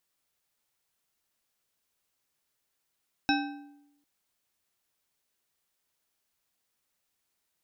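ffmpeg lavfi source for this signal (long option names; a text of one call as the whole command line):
ffmpeg -f lavfi -i "aevalsrc='0.0631*pow(10,-3*t/0.92)*sin(2*PI*288*t)+0.0531*pow(10,-3*t/0.679)*sin(2*PI*794*t)+0.0447*pow(10,-3*t/0.555)*sin(2*PI*1556.4*t)+0.0376*pow(10,-3*t/0.477)*sin(2*PI*2572.7*t)+0.0316*pow(10,-3*t/0.423)*sin(2*PI*3841.9*t)+0.0266*pow(10,-3*t/0.383)*sin(2*PI*5368.3*t)':duration=0.75:sample_rate=44100" out.wav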